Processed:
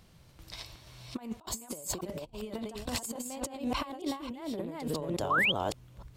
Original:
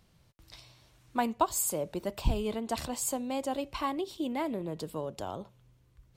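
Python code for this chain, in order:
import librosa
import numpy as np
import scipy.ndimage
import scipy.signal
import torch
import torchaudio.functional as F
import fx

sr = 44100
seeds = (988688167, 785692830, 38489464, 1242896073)

y = fx.reverse_delay(x, sr, ms=287, wet_db=-0.5)
y = fx.over_compress(y, sr, threshold_db=-36.0, ratio=-0.5)
y = fx.spec_paint(y, sr, seeds[0], shape='rise', start_s=5.3, length_s=0.22, low_hz=990.0, high_hz=3400.0, level_db=-26.0)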